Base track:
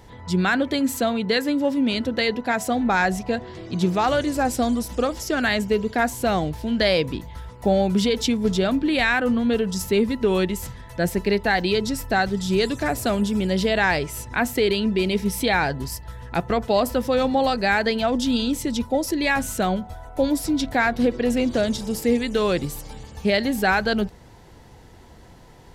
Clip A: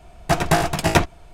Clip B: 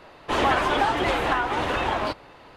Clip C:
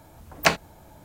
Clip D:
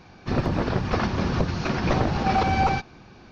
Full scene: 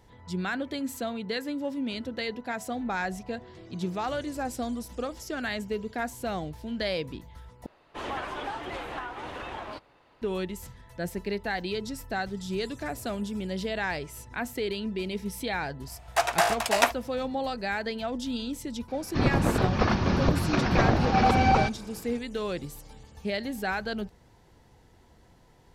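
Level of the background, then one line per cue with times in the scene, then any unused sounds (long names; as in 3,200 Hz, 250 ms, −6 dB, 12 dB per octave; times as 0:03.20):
base track −10.5 dB
0:07.66: overwrite with B −13 dB
0:15.87: mix in A −3 dB + high-pass filter 570 Hz 24 dB per octave
0:18.88: mix in D
not used: C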